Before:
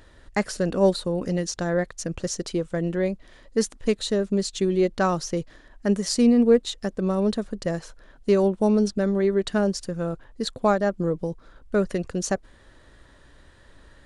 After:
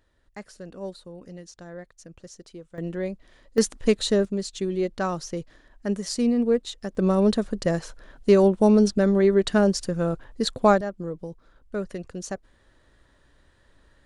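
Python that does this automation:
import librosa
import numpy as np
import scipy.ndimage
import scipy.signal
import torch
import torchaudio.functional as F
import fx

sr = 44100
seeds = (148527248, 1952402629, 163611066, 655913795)

y = fx.gain(x, sr, db=fx.steps((0.0, -16.0), (2.78, -5.0), (3.58, 2.5), (4.25, -4.5), (6.95, 3.0), (10.81, -7.5)))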